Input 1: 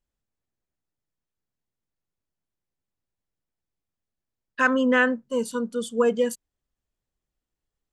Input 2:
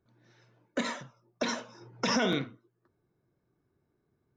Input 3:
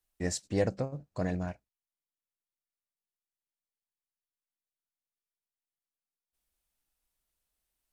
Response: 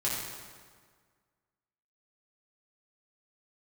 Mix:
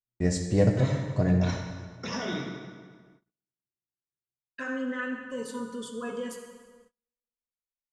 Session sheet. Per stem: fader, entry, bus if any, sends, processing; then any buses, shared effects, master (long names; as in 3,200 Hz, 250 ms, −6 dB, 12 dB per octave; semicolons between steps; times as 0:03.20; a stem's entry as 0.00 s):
−7.0 dB, 0.00 s, bus A, send −9.5 dB, comb filter 7.3 ms, depth 47%; downward compressor 5 to 1, threshold −22 dBFS, peak gain reduction 7.5 dB
−8.0 dB, 0.00 s, bus A, send −5.5 dB, low-shelf EQ 120 Hz +4 dB
−3.0 dB, 0.00 s, no bus, send −6 dB, low-shelf EQ 370 Hz +8.5 dB
bus A: 0.0 dB, pitch vibrato 1.5 Hz 9.6 cents; brickwall limiter −29.5 dBFS, peak gain reduction 9 dB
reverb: on, RT60 1.7 s, pre-delay 4 ms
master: low-pass filter 9,200 Hz 12 dB per octave; noise gate −58 dBFS, range −31 dB